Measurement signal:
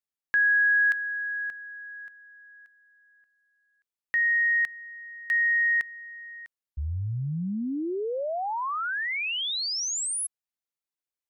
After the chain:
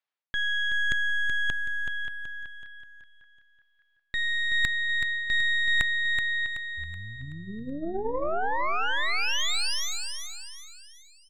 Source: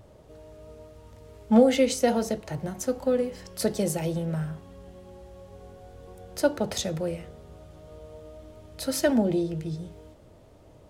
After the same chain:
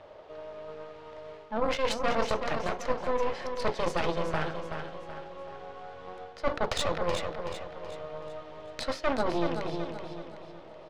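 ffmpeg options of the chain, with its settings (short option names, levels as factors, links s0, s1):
-filter_complex "[0:a]acrossover=split=440 4600:gain=0.1 1 0.0708[s0][s1][s2];[s0][s1][s2]amix=inputs=3:normalize=0,bandreject=f=60:t=h:w=6,bandreject=f=120:t=h:w=6,bandreject=f=180:t=h:w=6,bandreject=f=240:t=h:w=6,bandreject=f=300:t=h:w=6,bandreject=f=360:t=h:w=6,bandreject=f=420:t=h:w=6,bandreject=f=480:t=h:w=6,bandreject=f=540:t=h:w=6,areverse,acompressor=threshold=0.0141:ratio=16:attack=24:release=174:knee=6:detection=rms,areverse,aeval=exprs='0.075*(cos(1*acos(clip(val(0)/0.075,-1,1)))-cos(1*PI/2))+0.0211*(cos(6*acos(clip(val(0)/0.075,-1,1)))-cos(6*PI/2))':c=same,adynamicsmooth=sensitivity=7.5:basefreq=7700,asplit=2[s3][s4];[s4]aecho=0:1:377|754|1131|1508|1885:0.447|0.188|0.0788|0.0331|0.0139[s5];[s3][s5]amix=inputs=2:normalize=0,volume=2.82"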